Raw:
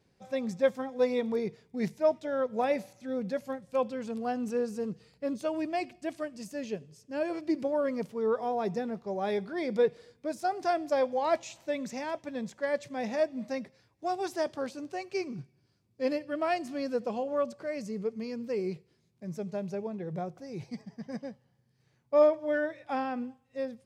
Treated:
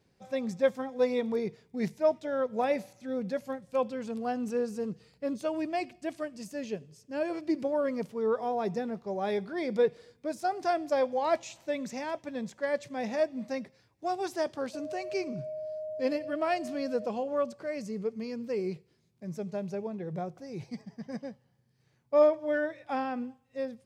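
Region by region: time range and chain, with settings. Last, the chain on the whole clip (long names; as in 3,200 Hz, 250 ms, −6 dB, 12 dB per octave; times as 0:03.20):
0:14.73–0:17.05: steady tone 620 Hz −40 dBFS + upward compression, threshold −31 dBFS
whole clip: no processing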